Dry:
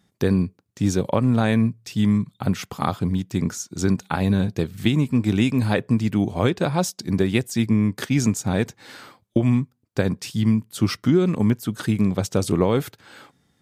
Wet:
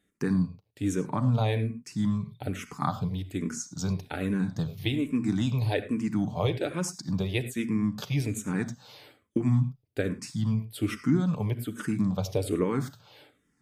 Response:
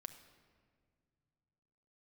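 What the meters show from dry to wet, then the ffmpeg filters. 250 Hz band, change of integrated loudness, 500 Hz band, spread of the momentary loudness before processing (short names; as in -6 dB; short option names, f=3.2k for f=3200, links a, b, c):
-8.0 dB, -7.0 dB, -8.0 dB, 6 LU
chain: -filter_complex "[1:a]atrim=start_sample=2205,atrim=end_sample=4410,asetrate=37926,aresample=44100[a];[0:a][a]afir=irnorm=-1:irlink=0,asplit=2[b][c];[c]afreqshift=-1.2[d];[b][d]amix=inputs=2:normalize=1"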